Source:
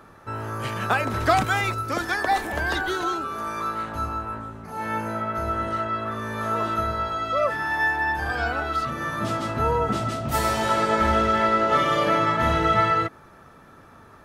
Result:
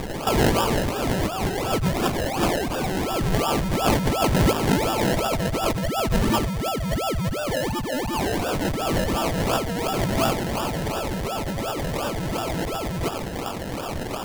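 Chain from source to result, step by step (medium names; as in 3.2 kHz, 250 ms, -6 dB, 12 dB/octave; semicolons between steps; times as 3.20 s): 5.81–8.13 s: spectral contrast enhancement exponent 1.8; peaking EQ 4.4 kHz +14 dB 0.68 oct; overdrive pedal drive 20 dB, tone 6.1 kHz, clips at -6.5 dBFS; decimation with a swept rate 30×, swing 60% 2.8 Hz; compressor with a negative ratio -24 dBFS, ratio -1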